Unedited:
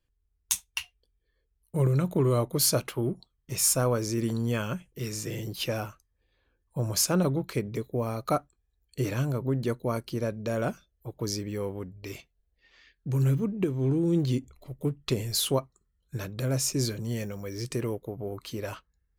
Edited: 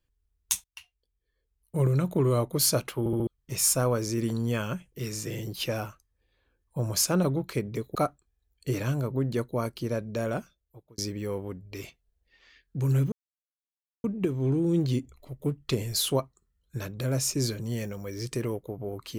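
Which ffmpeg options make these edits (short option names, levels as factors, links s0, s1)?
-filter_complex "[0:a]asplit=9[s0][s1][s2][s3][s4][s5][s6][s7][s8];[s0]atrim=end=0.64,asetpts=PTS-STARTPTS,afade=t=out:st=0.636:d=0.004:c=hsin:silence=0.1[s9];[s1]atrim=start=0.64:end=3.062,asetpts=PTS-STARTPTS,afade=t=in:d=1.17:silence=0.1[s10];[s2]atrim=start=2.988:end=3.062[s11];[s3]atrim=start=2.988:end=3.062[s12];[s4]atrim=start=2.988:end=3.062[s13];[s5]atrim=start=3.268:end=7.952[s14];[s6]atrim=start=8.258:end=11.29,asetpts=PTS-STARTPTS,afade=t=out:st=2.242:d=0.79[s15];[s7]atrim=start=11.29:end=13.43,asetpts=PTS-STARTPTS,afade=t=in:d=0.004:c=hsin,afade=t=out:st=2.136:d=0.004:c=hsin,apad=pad_dur=0.92[s16];[s8]atrim=start=13.43,asetpts=PTS-STARTPTS,afade=t=in:d=0.004:c=hsin[s17];[s9][s10]concat=n=2:v=0:a=1[s18];[s18][s11]acrossfade=d=0.004:c1=hsin:c2=hsin[s19];[s19][s12]acrossfade=d=0.004:c1=hsin:c2=hsin[s20];[s20][s13]acrossfade=d=0.004:c1=hsin:c2=hsin[s21];[s21][s14]acrossfade=d=0.004:c1=hsin:c2=hsin[s22];[s15][s16][s17]concat=n=3:v=0:a=1[s23];[s22][s23]acrossfade=d=0.004:c1=hsin:c2=hsin"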